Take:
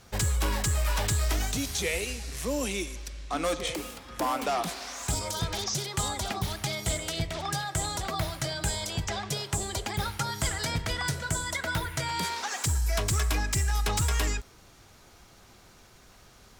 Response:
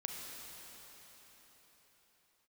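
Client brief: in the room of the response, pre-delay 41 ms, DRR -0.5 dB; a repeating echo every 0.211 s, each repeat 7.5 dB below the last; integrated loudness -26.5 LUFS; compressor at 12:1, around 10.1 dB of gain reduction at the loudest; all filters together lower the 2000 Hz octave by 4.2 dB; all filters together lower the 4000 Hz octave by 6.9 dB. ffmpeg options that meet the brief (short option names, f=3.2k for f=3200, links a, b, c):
-filter_complex "[0:a]equalizer=f=2k:t=o:g=-3.5,equalizer=f=4k:t=o:g=-8,acompressor=threshold=-34dB:ratio=12,aecho=1:1:211|422|633|844|1055:0.422|0.177|0.0744|0.0312|0.0131,asplit=2[a][b];[1:a]atrim=start_sample=2205,adelay=41[c];[b][c]afir=irnorm=-1:irlink=0,volume=0.5dB[d];[a][d]amix=inputs=2:normalize=0,volume=8dB"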